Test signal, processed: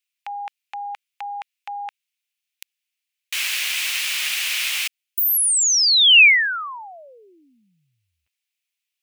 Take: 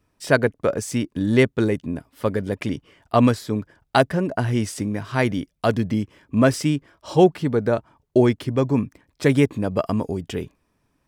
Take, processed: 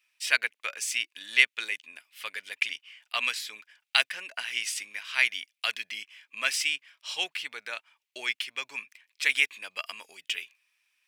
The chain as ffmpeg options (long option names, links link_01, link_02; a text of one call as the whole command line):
ffmpeg -i in.wav -af "highpass=frequency=2500:width_type=q:width=3.1" out.wav